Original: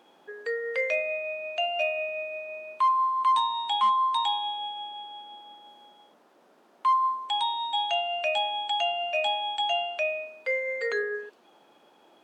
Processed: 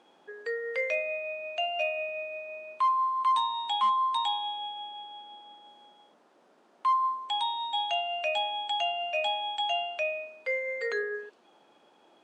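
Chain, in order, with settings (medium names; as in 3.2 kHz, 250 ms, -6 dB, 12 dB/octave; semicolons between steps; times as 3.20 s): low-pass 10 kHz 24 dB/octave; trim -2.5 dB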